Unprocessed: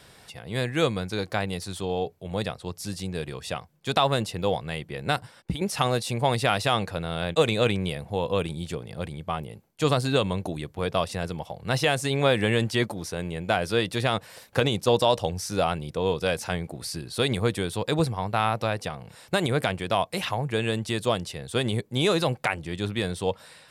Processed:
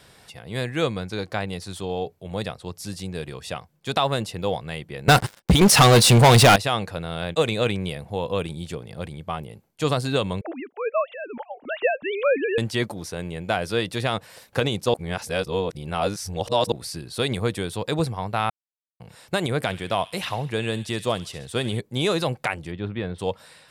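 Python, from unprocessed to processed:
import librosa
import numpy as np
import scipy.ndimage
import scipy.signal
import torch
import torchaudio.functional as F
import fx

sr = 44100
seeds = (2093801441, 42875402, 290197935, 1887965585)

y = fx.high_shelf(x, sr, hz=8900.0, db=-6.5, at=(0.75, 1.67))
y = fx.leveller(y, sr, passes=5, at=(5.08, 6.56))
y = fx.sine_speech(y, sr, at=(10.41, 12.58))
y = fx.echo_wet_highpass(y, sr, ms=68, feedback_pct=55, hz=2300.0, wet_db=-11.5, at=(19.64, 21.78), fade=0.02)
y = fx.air_absorb(y, sr, metres=390.0, at=(22.7, 23.18), fade=0.02)
y = fx.edit(y, sr, fx.reverse_span(start_s=14.94, length_s=1.78),
    fx.silence(start_s=18.5, length_s=0.5), tone=tone)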